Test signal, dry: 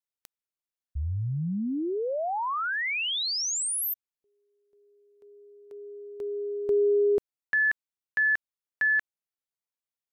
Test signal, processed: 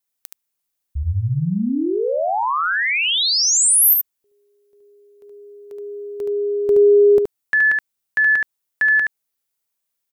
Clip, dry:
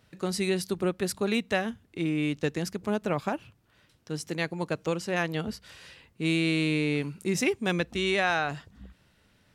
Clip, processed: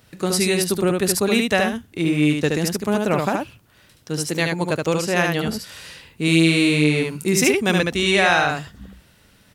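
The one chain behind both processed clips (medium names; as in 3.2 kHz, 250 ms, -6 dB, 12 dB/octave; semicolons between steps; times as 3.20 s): treble shelf 7.8 kHz +10 dB; delay 73 ms -3.5 dB; trim +7.5 dB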